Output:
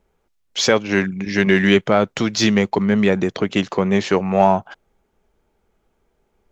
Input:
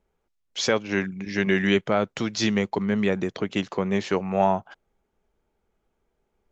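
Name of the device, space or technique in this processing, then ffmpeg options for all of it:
parallel distortion: -filter_complex "[0:a]asplit=2[s0][s1];[s1]asoftclip=type=hard:threshold=0.0631,volume=0.211[s2];[s0][s2]amix=inputs=2:normalize=0,volume=2"

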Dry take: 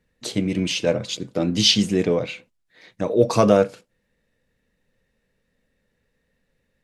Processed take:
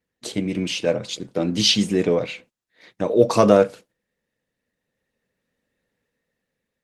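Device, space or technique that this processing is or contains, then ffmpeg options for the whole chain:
video call: -af "highpass=f=150:p=1,dynaudnorm=f=450:g=7:m=3.76,agate=range=0.398:threshold=0.00355:ratio=16:detection=peak" -ar 48000 -c:a libopus -b:a 20k

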